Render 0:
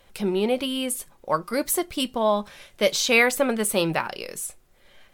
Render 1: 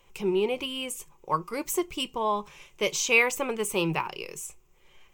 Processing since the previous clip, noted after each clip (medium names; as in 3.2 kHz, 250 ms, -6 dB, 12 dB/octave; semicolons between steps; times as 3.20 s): rippled EQ curve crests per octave 0.73, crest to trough 11 dB; trim -5.5 dB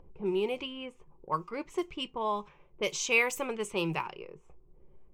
level-controlled noise filter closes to 330 Hz, open at -23 dBFS; upward compressor, threshold -38 dBFS; trim -4.5 dB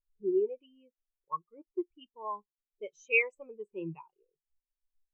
spectral contrast expander 2.5:1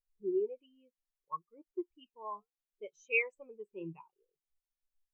flange 0.68 Hz, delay 0.1 ms, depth 4.8 ms, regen -84%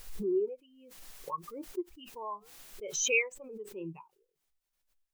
swell ahead of each attack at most 47 dB/s; trim +2 dB